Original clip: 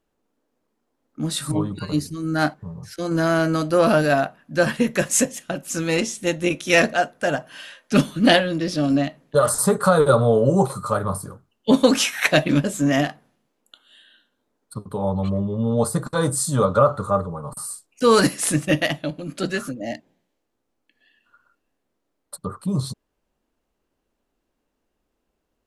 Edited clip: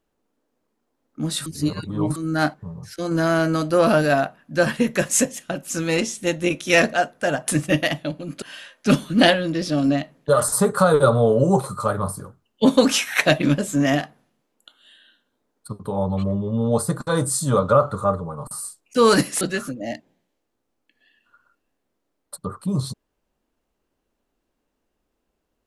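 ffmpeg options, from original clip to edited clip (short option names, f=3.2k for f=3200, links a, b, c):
-filter_complex "[0:a]asplit=6[a][b][c][d][e][f];[a]atrim=end=1.462[g];[b]atrim=start=1.458:end=2.162,asetpts=PTS-STARTPTS,areverse[h];[c]atrim=start=2.158:end=7.482[i];[d]atrim=start=18.468:end=19.412[j];[e]atrim=start=7.478:end=18.472[k];[f]atrim=start=19.408[l];[g][h]acrossfade=d=0.004:c1=hsin:c2=hsin[m];[m][i]acrossfade=d=0.004:c1=hsin:c2=hsin[n];[n][j]acrossfade=d=0.004:c1=hsin:c2=hsin[o];[o][k]acrossfade=d=0.004:c1=hsin:c2=hsin[p];[p][l]acrossfade=d=0.004:c1=hsin:c2=hsin"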